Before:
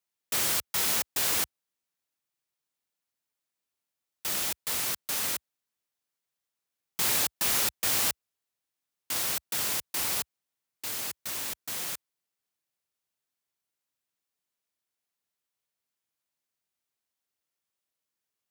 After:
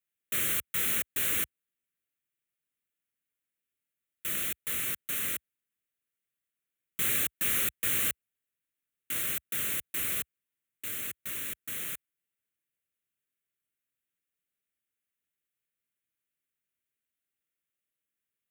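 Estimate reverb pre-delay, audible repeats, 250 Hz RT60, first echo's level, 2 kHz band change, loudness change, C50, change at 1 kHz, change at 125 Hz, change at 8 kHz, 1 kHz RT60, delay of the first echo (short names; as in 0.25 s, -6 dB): none, none, none, none, -0.5 dB, -2.0 dB, none, -8.5 dB, -0.5 dB, -4.5 dB, none, none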